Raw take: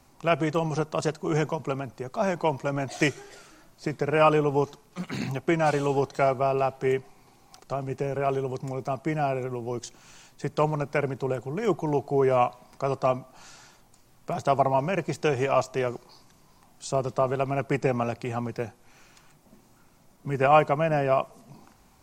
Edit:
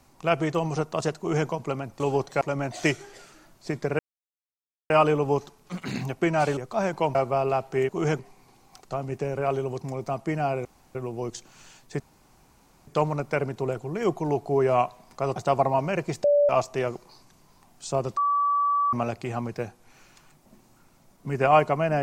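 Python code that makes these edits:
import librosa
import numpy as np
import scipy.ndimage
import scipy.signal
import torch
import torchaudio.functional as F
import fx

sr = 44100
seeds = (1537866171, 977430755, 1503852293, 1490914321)

y = fx.edit(x, sr, fx.duplicate(start_s=1.18, length_s=0.3, to_s=6.98),
    fx.swap(start_s=2.0, length_s=0.58, other_s=5.83, other_length_s=0.41),
    fx.insert_silence(at_s=4.16, length_s=0.91),
    fx.insert_room_tone(at_s=9.44, length_s=0.3),
    fx.insert_room_tone(at_s=10.49, length_s=0.87),
    fx.cut(start_s=12.98, length_s=1.38),
    fx.bleep(start_s=15.24, length_s=0.25, hz=580.0, db=-16.0),
    fx.bleep(start_s=17.17, length_s=0.76, hz=1150.0, db=-20.0), tone=tone)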